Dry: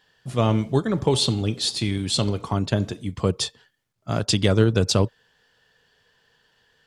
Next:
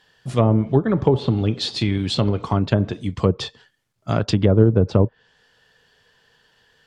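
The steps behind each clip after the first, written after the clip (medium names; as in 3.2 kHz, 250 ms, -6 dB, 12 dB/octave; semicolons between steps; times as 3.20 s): low-pass that closes with the level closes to 750 Hz, closed at -15 dBFS; trim +4 dB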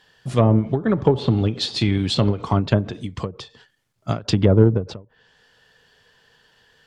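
in parallel at -7 dB: saturation -11 dBFS, distortion -12 dB; on the sum: endings held to a fixed fall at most 200 dB/s; trim -1.5 dB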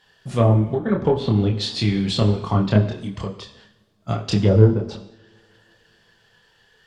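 chorus voices 6, 1.5 Hz, delay 27 ms, depth 3 ms; two-slope reverb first 0.84 s, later 3.4 s, from -26 dB, DRR 8.5 dB; trim +1.5 dB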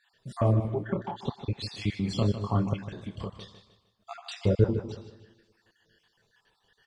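random holes in the spectrogram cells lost 48%; feedback delay 153 ms, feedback 37%, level -11 dB; trim -7.5 dB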